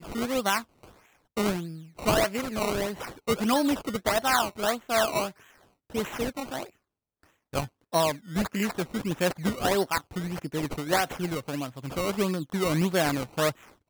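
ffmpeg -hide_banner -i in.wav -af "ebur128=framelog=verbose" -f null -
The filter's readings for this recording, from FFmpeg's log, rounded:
Integrated loudness:
  I:         -28.2 LUFS
  Threshold: -38.6 LUFS
Loudness range:
  LRA:         4.6 LU
  Threshold: -48.7 LUFS
  LRA low:   -31.4 LUFS
  LRA high:  -26.8 LUFS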